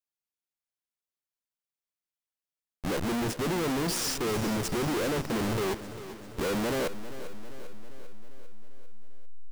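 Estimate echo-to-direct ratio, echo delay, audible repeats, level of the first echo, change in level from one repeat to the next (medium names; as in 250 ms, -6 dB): -11.5 dB, 397 ms, 5, -13.5 dB, -4.5 dB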